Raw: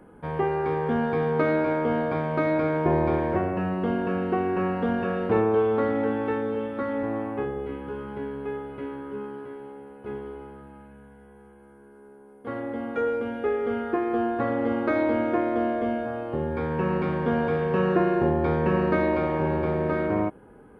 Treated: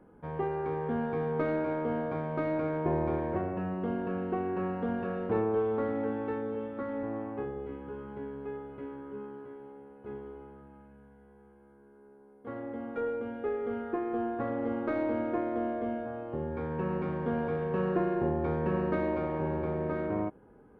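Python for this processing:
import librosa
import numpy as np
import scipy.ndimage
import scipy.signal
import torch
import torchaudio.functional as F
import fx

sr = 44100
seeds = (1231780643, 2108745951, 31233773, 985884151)

y = fx.tracing_dist(x, sr, depth_ms=0.032)
y = fx.high_shelf(y, sr, hz=2300.0, db=-9.5)
y = y * librosa.db_to_amplitude(-6.5)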